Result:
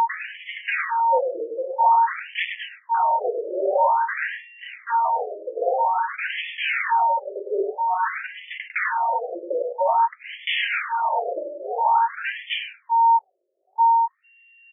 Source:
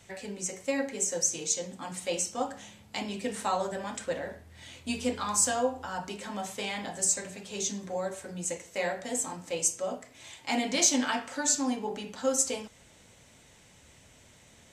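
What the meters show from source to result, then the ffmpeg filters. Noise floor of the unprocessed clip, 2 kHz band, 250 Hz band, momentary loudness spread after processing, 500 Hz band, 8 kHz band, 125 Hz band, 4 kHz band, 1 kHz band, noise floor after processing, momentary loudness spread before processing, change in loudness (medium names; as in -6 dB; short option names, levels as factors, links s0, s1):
-58 dBFS, +12.0 dB, -9.5 dB, 12 LU, +7.0 dB, under -40 dB, under -25 dB, +4.0 dB, +18.5 dB, -63 dBFS, 12 LU, +8.0 dB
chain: -filter_complex "[0:a]aemphasis=mode=production:type=cd,bandreject=f=54.78:t=h:w=4,bandreject=f=109.56:t=h:w=4,bandreject=f=164.34:t=h:w=4,bandreject=f=219.12:t=h:w=4,bandreject=f=273.9:t=h:w=4,bandreject=f=328.68:t=h:w=4,bandreject=f=383.46:t=h:w=4,anlmdn=0.0631,equalizer=f=88:t=o:w=2:g=-6.5,acompressor=threshold=0.0447:ratio=10,aeval=exprs='val(0)+0.0141*sin(2*PI*920*n/s)':c=same,aresample=8000,aresample=44100,aphaser=in_gain=1:out_gain=1:delay=3.2:decay=0.2:speed=0.18:type=triangular,aresample=11025,aeval=exprs='0.158*sin(PI/2*6.31*val(0)/0.158)':c=same,aresample=44100,tremolo=f=1.6:d=0.47,asplit=2[s0][s1];[s1]adelay=102,lowpass=f=2100:p=1,volume=0.631,asplit=2[s2][s3];[s3]adelay=102,lowpass=f=2100:p=1,volume=0.17,asplit=2[s4][s5];[s5]adelay=102,lowpass=f=2100:p=1,volume=0.17[s6];[s0][s2][s4][s6]amix=inputs=4:normalize=0,afftfilt=real='re*between(b*sr/1024,450*pow(2500/450,0.5+0.5*sin(2*PI*0.5*pts/sr))/1.41,450*pow(2500/450,0.5+0.5*sin(2*PI*0.5*pts/sr))*1.41)':imag='im*between(b*sr/1024,450*pow(2500/450,0.5+0.5*sin(2*PI*0.5*pts/sr))/1.41,450*pow(2500/450,0.5+0.5*sin(2*PI*0.5*pts/sr))*1.41)':win_size=1024:overlap=0.75,volume=1.33"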